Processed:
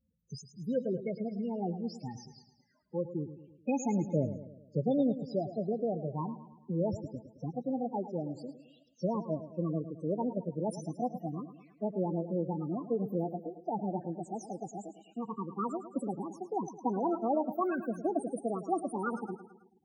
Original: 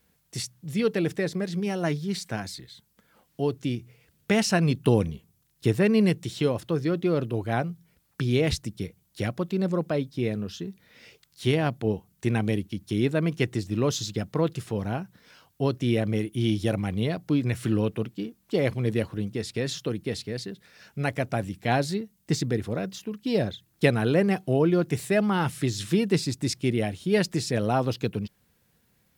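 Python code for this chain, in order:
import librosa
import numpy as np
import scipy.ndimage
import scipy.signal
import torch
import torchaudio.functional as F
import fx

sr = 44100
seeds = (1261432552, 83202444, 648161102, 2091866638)

y = fx.speed_glide(x, sr, from_pct=110, to_pct=184)
y = fx.spec_topn(y, sr, count=8)
y = fx.echo_feedback(y, sr, ms=108, feedback_pct=51, wet_db=-12.5)
y = y * 10.0 ** (-7.0 / 20.0)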